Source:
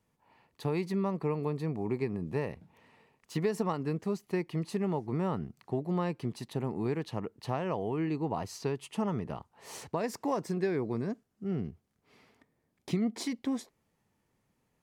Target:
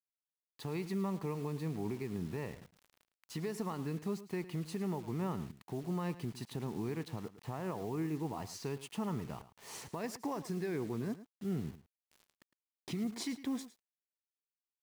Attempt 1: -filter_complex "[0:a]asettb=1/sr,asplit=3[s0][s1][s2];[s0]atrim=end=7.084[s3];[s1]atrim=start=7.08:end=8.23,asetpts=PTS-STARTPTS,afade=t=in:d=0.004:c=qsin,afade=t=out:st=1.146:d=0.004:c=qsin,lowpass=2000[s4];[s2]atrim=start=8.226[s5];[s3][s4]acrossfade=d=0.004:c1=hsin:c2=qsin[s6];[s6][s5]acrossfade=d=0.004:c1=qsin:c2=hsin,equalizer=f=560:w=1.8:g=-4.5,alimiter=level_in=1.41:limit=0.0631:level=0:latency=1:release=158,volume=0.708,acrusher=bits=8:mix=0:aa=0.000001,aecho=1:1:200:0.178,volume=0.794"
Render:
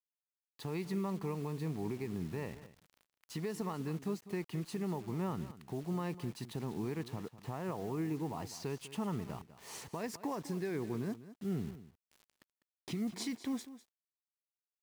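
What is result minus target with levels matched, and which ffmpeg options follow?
echo 92 ms late
-filter_complex "[0:a]asettb=1/sr,asplit=3[s0][s1][s2];[s0]atrim=end=7.084[s3];[s1]atrim=start=7.08:end=8.23,asetpts=PTS-STARTPTS,afade=t=in:d=0.004:c=qsin,afade=t=out:st=1.146:d=0.004:c=qsin,lowpass=2000[s4];[s2]atrim=start=8.226[s5];[s3][s4]acrossfade=d=0.004:c1=hsin:c2=qsin[s6];[s6][s5]acrossfade=d=0.004:c1=qsin:c2=hsin,equalizer=f=560:w=1.8:g=-4.5,alimiter=level_in=1.41:limit=0.0631:level=0:latency=1:release=158,volume=0.708,acrusher=bits=8:mix=0:aa=0.000001,aecho=1:1:108:0.178,volume=0.794"

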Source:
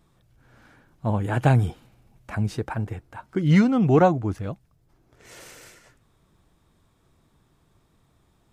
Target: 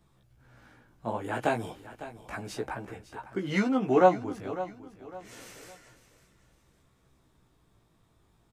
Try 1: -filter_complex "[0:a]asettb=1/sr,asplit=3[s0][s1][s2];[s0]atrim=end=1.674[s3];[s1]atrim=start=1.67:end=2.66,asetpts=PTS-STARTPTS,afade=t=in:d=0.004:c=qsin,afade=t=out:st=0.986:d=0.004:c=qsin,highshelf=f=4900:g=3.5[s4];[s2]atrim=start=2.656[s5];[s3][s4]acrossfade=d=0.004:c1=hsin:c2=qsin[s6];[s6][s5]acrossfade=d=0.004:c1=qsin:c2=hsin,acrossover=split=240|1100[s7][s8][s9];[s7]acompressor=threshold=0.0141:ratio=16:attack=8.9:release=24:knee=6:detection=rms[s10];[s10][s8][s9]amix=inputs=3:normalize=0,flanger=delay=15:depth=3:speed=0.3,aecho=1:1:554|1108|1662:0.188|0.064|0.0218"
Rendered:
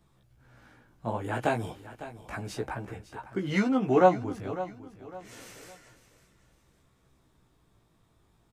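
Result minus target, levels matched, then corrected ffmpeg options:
compression: peak gain reduction -7 dB
-filter_complex "[0:a]asettb=1/sr,asplit=3[s0][s1][s2];[s0]atrim=end=1.674[s3];[s1]atrim=start=1.67:end=2.66,asetpts=PTS-STARTPTS,afade=t=in:d=0.004:c=qsin,afade=t=out:st=0.986:d=0.004:c=qsin,highshelf=f=4900:g=3.5[s4];[s2]atrim=start=2.656[s5];[s3][s4]acrossfade=d=0.004:c1=hsin:c2=qsin[s6];[s6][s5]acrossfade=d=0.004:c1=qsin:c2=hsin,acrossover=split=240|1100[s7][s8][s9];[s7]acompressor=threshold=0.00596:ratio=16:attack=8.9:release=24:knee=6:detection=rms[s10];[s10][s8][s9]amix=inputs=3:normalize=0,flanger=delay=15:depth=3:speed=0.3,aecho=1:1:554|1108|1662:0.188|0.064|0.0218"

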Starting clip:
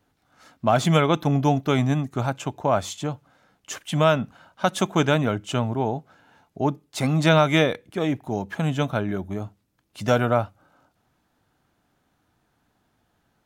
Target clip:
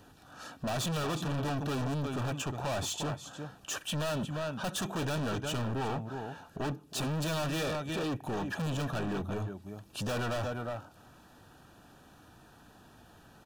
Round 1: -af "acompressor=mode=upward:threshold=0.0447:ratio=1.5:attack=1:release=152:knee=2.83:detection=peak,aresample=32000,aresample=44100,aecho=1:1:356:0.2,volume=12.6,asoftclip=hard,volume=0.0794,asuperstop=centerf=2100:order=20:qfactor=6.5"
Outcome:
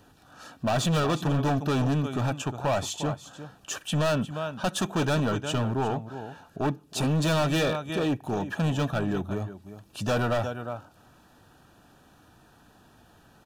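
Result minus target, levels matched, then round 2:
overload inside the chain: distortion -4 dB
-af "acompressor=mode=upward:threshold=0.0447:ratio=1.5:attack=1:release=152:knee=2.83:detection=peak,aresample=32000,aresample=44100,aecho=1:1:356:0.2,volume=37.6,asoftclip=hard,volume=0.0266,asuperstop=centerf=2100:order=20:qfactor=6.5"

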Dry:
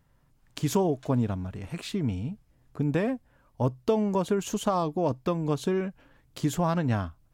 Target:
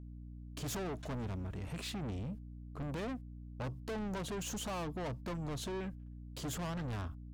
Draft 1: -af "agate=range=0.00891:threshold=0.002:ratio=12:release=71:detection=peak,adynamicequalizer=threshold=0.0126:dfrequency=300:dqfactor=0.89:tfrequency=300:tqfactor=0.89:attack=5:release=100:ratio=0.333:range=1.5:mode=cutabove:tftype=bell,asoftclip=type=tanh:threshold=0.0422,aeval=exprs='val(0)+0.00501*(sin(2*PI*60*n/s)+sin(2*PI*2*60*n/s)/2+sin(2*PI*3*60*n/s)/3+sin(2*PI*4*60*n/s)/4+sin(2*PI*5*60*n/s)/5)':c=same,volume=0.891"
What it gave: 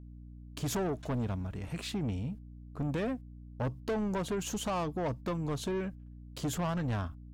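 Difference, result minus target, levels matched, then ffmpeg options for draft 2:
saturation: distortion -5 dB
-af "agate=range=0.00891:threshold=0.002:ratio=12:release=71:detection=peak,adynamicequalizer=threshold=0.0126:dfrequency=300:dqfactor=0.89:tfrequency=300:tqfactor=0.89:attack=5:release=100:ratio=0.333:range=1.5:mode=cutabove:tftype=bell,asoftclip=type=tanh:threshold=0.015,aeval=exprs='val(0)+0.00501*(sin(2*PI*60*n/s)+sin(2*PI*2*60*n/s)/2+sin(2*PI*3*60*n/s)/3+sin(2*PI*4*60*n/s)/4+sin(2*PI*5*60*n/s)/5)':c=same,volume=0.891"

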